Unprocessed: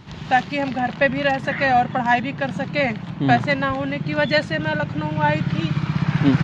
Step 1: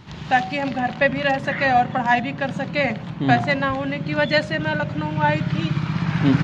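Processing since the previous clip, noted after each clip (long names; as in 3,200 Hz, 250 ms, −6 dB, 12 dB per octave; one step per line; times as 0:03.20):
hum removal 47.16 Hz, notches 16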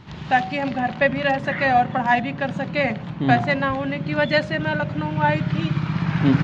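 high-shelf EQ 6,400 Hz −9.5 dB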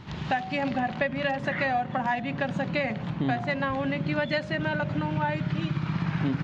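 downward compressor, threshold −24 dBFS, peak gain reduction 12.5 dB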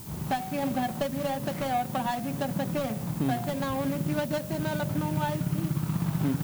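running median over 25 samples
background noise blue −46 dBFS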